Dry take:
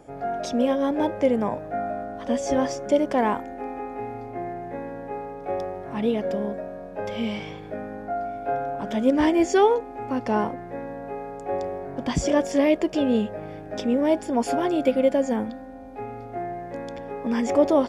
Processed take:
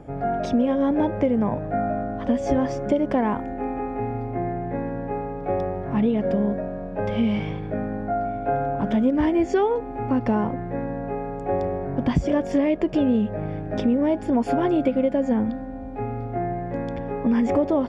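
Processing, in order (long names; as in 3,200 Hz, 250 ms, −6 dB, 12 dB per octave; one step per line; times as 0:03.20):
bass and treble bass +10 dB, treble −13 dB
downward compressor, threshold −20 dBFS, peak gain reduction 9.5 dB
level +3 dB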